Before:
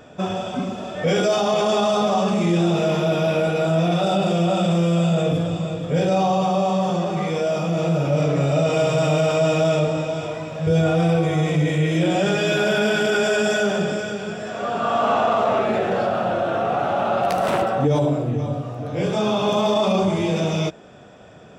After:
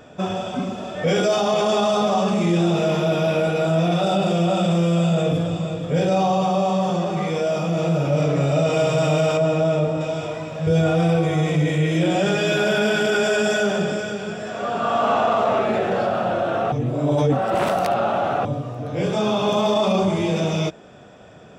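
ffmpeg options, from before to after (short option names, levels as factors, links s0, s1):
-filter_complex "[0:a]asettb=1/sr,asplit=3[s0][s1][s2];[s0]atrim=end=9.374[s3];[s1]atrim=start=9.37:end=10.01,asetpts=PTS-STARTPTS,afade=t=in:d=0.004:c=qsin,afade=t=out:st=0.636:d=0.004:c=qsin,highshelf=f=2000:g=-9[s4];[s2]atrim=start=10.006[s5];[s3][s4]acrossfade=d=0.004:c1=hsin:c2=qsin[s6];[s6][s5]acrossfade=d=0.004:c1=qsin:c2=hsin,asplit=3[s7][s8][s9];[s7]atrim=end=16.722[s10];[s8]atrim=start=16.718:end=18.452,asetpts=PTS-STARTPTS,areverse[s11];[s9]atrim=start=18.448[s12];[s10][s11]acrossfade=d=0.004:c1=hsin:c2=hsin[s13];[s13][s12]acrossfade=d=0.004:c1=hsin:c2=hsin"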